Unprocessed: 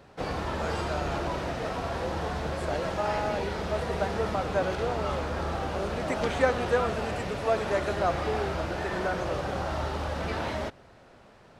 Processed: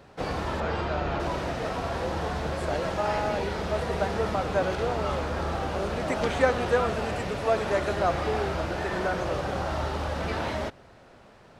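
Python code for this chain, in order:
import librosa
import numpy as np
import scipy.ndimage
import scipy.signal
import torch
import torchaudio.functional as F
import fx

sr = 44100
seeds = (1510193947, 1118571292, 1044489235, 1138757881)

y = fx.lowpass(x, sr, hz=3800.0, slope=12, at=(0.6, 1.2))
y = y * librosa.db_to_amplitude(1.5)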